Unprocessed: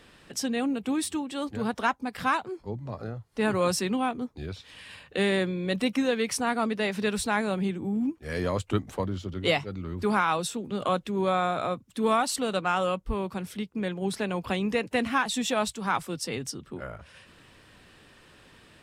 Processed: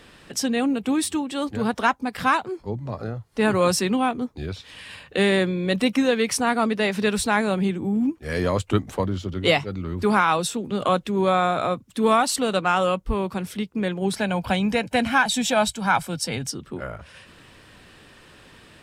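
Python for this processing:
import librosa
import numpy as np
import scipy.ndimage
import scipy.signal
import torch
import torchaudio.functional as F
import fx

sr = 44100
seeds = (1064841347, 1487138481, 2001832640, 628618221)

y = fx.comb(x, sr, ms=1.3, depth=0.52, at=(14.16, 16.47))
y = y * librosa.db_to_amplitude(5.5)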